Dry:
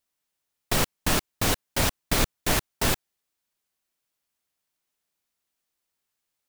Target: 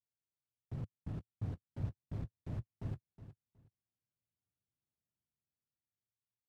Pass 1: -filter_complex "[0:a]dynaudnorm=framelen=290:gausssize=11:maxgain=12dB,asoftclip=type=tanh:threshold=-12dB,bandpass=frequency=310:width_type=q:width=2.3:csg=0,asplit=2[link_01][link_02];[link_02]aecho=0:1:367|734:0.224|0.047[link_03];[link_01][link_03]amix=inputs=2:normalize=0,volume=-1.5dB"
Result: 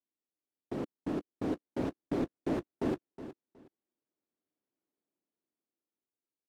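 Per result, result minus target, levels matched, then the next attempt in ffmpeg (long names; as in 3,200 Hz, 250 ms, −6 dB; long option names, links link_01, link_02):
125 Hz band −12.0 dB; soft clipping: distortion −9 dB
-filter_complex "[0:a]dynaudnorm=framelen=290:gausssize=11:maxgain=12dB,asoftclip=type=tanh:threshold=-12dB,bandpass=frequency=110:width_type=q:width=2.3:csg=0,asplit=2[link_01][link_02];[link_02]aecho=0:1:367|734:0.224|0.047[link_03];[link_01][link_03]amix=inputs=2:normalize=0,volume=-1.5dB"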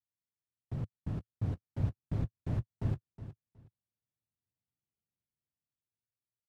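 soft clipping: distortion −9 dB
-filter_complex "[0:a]dynaudnorm=framelen=290:gausssize=11:maxgain=12dB,asoftclip=type=tanh:threshold=-23.5dB,bandpass=frequency=110:width_type=q:width=2.3:csg=0,asplit=2[link_01][link_02];[link_02]aecho=0:1:367|734:0.224|0.047[link_03];[link_01][link_03]amix=inputs=2:normalize=0,volume=-1.5dB"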